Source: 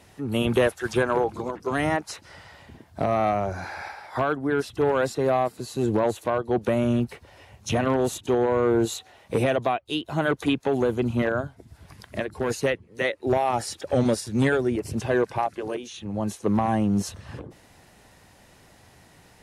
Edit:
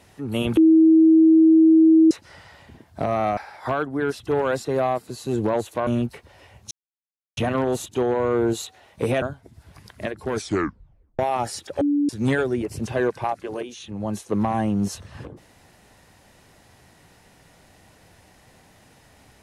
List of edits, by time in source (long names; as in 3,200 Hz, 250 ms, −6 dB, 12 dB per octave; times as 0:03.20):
0:00.57–0:02.11: beep over 321 Hz −10 dBFS
0:03.37–0:03.87: remove
0:06.37–0:06.85: remove
0:07.69: splice in silence 0.66 s
0:09.54–0:11.36: remove
0:12.45: tape stop 0.88 s
0:13.95–0:14.23: beep over 289 Hz −17 dBFS